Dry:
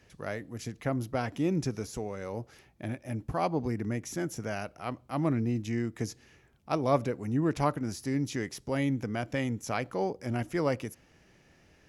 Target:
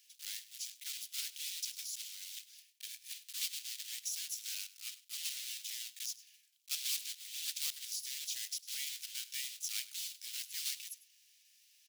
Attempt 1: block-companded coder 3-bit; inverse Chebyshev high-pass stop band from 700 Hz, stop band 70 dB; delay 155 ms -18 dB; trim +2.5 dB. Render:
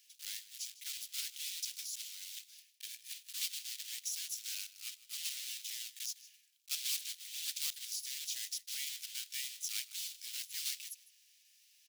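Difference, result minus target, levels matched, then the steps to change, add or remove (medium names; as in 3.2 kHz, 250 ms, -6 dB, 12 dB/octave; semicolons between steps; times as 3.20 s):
echo 54 ms late
change: delay 101 ms -18 dB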